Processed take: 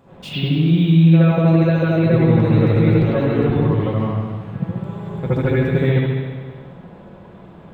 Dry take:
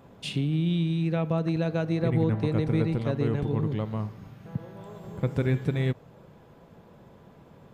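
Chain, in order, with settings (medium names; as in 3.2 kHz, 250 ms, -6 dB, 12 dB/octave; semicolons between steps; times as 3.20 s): reverberation RT60 1.6 s, pre-delay 67 ms, DRR -10.5 dB; decimation joined by straight lines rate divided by 2×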